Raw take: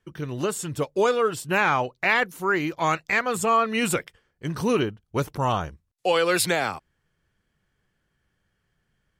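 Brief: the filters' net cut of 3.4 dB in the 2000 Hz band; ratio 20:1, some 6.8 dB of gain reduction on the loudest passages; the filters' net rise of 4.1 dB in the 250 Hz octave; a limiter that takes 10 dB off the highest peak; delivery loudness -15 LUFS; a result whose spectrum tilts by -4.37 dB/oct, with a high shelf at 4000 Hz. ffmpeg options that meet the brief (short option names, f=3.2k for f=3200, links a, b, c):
-af "equalizer=f=250:t=o:g=5.5,equalizer=f=2k:t=o:g=-6.5,highshelf=f=4k:g=8.5,acompressor=threshold=-21dB:ratio=20,volume=16.5dB,alimiter=limit=-5dB:level=0:latency=1"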